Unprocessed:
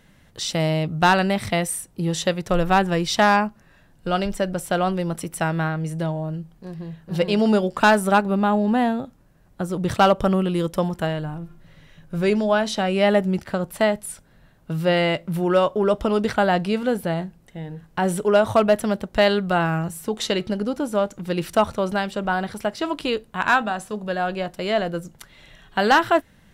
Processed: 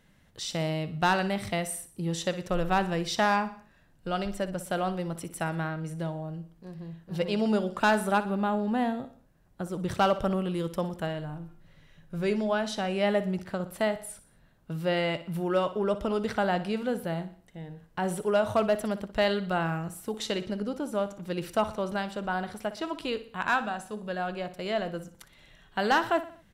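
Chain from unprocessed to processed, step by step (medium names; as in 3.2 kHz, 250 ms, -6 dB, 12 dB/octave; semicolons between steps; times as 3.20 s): feedback delay 60 ms, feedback 47%, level -14 dB; trim -8 dB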